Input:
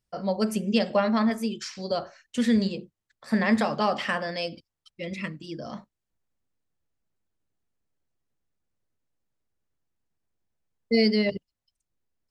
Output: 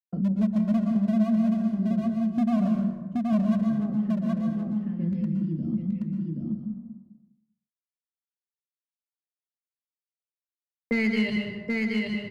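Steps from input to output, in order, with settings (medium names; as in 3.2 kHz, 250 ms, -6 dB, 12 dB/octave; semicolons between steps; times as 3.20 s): peaking EQ 580 Hz -14.5 dB 2.1 oct; in parallel at -0.5 dB: compression 6:1, threshold -39 dBFS, peak gain reduction 15.5 dB; on the sum: crossover distortion -57 dBFS; low-pass sweep 230 Hz -> 9.8 kHz, 9.76–11.90 s; hard clipper -21.5 dBFS, distortion -9 dB; on a send: delay 775 ms -5.5 dB; on the sum: plate-style reverb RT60 0.86 s, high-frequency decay 0.6×, pre-delay 105 ms, DRR 3.5 dB; three bands compressed up and down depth 70%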